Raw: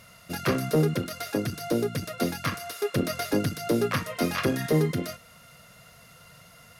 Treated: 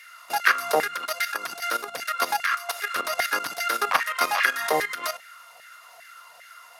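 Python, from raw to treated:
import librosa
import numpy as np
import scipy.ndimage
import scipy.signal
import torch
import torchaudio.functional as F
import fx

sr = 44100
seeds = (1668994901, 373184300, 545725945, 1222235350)

y = fx.level_steps(x, sr, step_db=12)
y = fx.filter_lfo_highpass(y, sr, shape='saw_down', hz=2.5, low_hz=710.0, high_hz=1900.0, q=4.0)
y = y * librosa.db_to_amplitude(9.0)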